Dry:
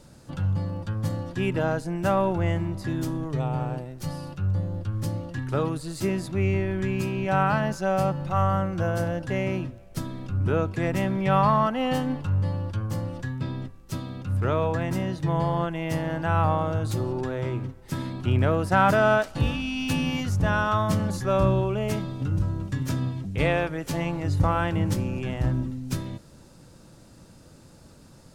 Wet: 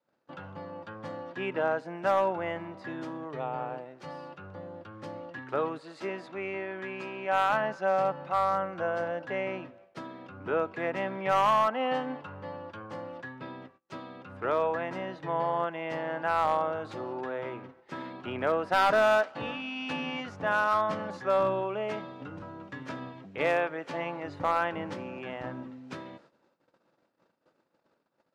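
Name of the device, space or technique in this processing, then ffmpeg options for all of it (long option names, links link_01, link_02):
walkie-talkie: -filter_complex "[0:a]asettb=1/sr,asplit=3[link_01][link_02][link_03];[link_01]atrim=end=5.784[link_04];[link_02]atrim=start=5.78:end=7.5,asetpts=PTS-STARTPTS,afade=type=in:duration=0.004:curve=qsin,afade=type=out:start_time=1.716:duration=0.004:curve=qsin,highpass=frequency=260:poles=1[link_05];[link_03]atrim=start=7.496[link_06];[link_04][link_05]acrossfade=duration=0.004:curve1=hsin:curve2=qsin[link_07];[link_07][link_06]acrossfade=duration=0.004:curve1=qsin:curve2=hsin,adynamicequalizer=threshold=0.00501:dfrequency=360:dqfactor=4.6:tfrequency=360:tqfactor=4.6:attack=5:release=100:ratio=0.375:range=2:mode=cutabove:tftype=bell,highpass=420,lowpass=2400,asoftclip=type=hard:threshold=-18dB,agate=range=-23dB:threshold=-56dB:ratio=16:detection=peak"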